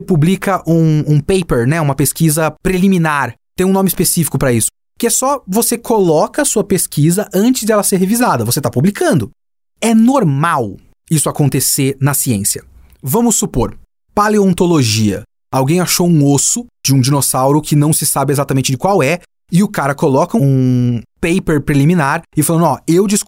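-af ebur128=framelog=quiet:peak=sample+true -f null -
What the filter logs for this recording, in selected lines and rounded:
Integrated loudness:
  I:         -13.0 LUFS
  Threshold: -23.2 LUFS
Loudness range:
  LRA:         1.8 LU
  Threshold: -33.2 LUFS
  LRA low:   -14.0 LUFS
  LRA high:  -12.2 LUFS
Sample peak:
  Peak:       -1.3 dBFS
True peak:
  Peak:       -0.8 dBFS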